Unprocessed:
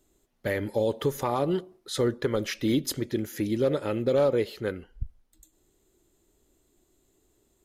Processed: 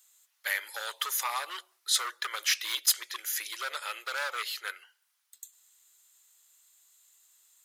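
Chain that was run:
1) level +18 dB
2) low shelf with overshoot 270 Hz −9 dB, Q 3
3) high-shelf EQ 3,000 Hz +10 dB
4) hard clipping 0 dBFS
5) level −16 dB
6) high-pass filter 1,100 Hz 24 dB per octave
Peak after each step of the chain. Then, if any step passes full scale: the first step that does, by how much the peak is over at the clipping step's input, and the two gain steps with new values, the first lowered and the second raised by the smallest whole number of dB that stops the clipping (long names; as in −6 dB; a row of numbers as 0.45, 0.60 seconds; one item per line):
+4.5, +7.5, +9.0, 0.0, −16.0, −11.5 dBFS
step 1, 9.0 dB
step 1 +9 dB, step 5 −7 dB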